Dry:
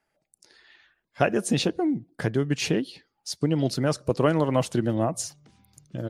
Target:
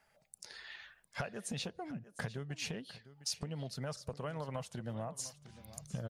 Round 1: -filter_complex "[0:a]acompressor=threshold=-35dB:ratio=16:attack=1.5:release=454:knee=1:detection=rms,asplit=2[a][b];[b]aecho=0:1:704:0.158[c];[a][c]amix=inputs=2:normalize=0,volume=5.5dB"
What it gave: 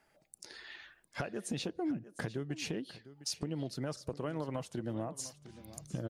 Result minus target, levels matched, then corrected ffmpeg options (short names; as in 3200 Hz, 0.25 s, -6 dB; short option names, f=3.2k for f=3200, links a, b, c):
250 Hz band +4.0 dB
-filter_complex "[0:a]acompressor=threshold=-35dB:ratio=16:attack=1.5:release=454:knee=1:detection=rms,equalizer=f=320:t=o:w=0.54:g=-15,asplit=2[a][b];[b]aecho=0:1:704:0.158[c];[a][c]amix=inputs=2:normalize=0,volume=5.5dB"